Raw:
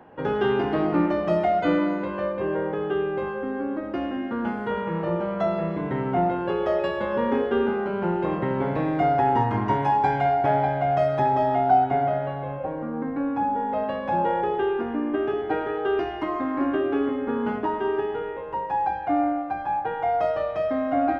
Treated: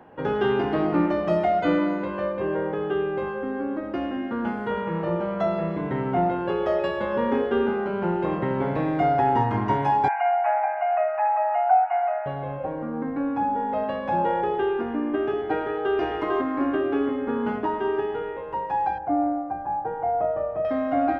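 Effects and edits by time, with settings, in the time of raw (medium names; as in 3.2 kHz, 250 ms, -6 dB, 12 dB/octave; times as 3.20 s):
10.08–12.26 s: brick-wall FIR band-pass 610–2900 Hz
15.56–15.96 s: echo throw 450 ms, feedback 15%, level -3 dB
18.98–20.65 s: low-pass 1 kHz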